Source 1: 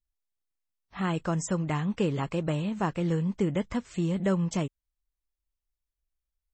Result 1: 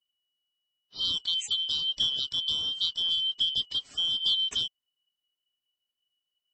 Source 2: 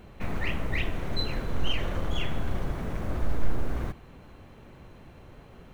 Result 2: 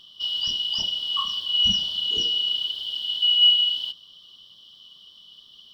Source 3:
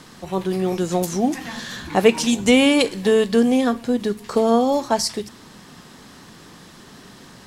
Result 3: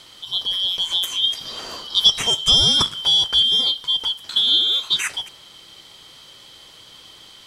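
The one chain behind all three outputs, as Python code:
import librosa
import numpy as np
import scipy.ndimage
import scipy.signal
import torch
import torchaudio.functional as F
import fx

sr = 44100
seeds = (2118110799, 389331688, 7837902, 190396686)

y = fx.band_shuffle(x, sr, order='3412')
y = fx.low_shelf(y, sr, hz=360.0, db=3.0)
y = fx.notch(y, sr, hz=7000.0, q=25.0)
y = fx.dynamic_eq(y, sr, hz=990.0, q=3.5, threshold_db=-49.0, ratio=4.0, max_db=4)
y = y * librosa.db_to_amplitude(-1.0)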